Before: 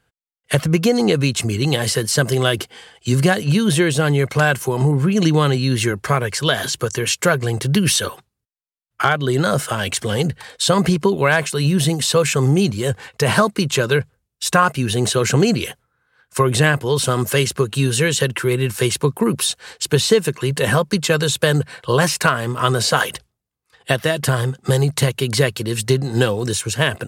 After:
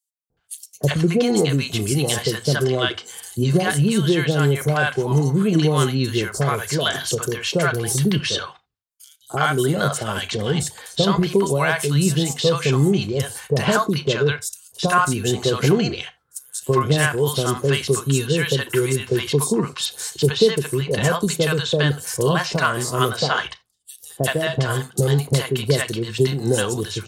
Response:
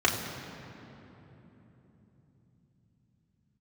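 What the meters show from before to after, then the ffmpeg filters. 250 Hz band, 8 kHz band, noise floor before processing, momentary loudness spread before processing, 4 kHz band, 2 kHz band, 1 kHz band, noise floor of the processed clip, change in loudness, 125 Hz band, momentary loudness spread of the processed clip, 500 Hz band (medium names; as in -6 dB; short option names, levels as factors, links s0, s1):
-2.0 dB, -3.5 dB, -78 dBFS, 5 LU, -2.5 dB, -3.5 dB, -2.5 dB, -61 dBFS, -2.0 dB, -2.0 dB, 7 LU, -1.5 dB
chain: -filter_complex "[0:a]acrossover=split=700|5900[s0][s1][s2];[s0]adelay=300[s3];[s1]adelay=370[s4];[s3][s4][s2]amix=inputs=3:normalize=0,asplit=2[s5][s6];[1:a]atrim=start_sample=2205,atrim=end_sample=3969[s7];[s6][s7]afir=irnorm=-1:irlink=0,volume=0.0841[s8];[s5][s8]amix=inputs=2:normalize=0,volume=0.75"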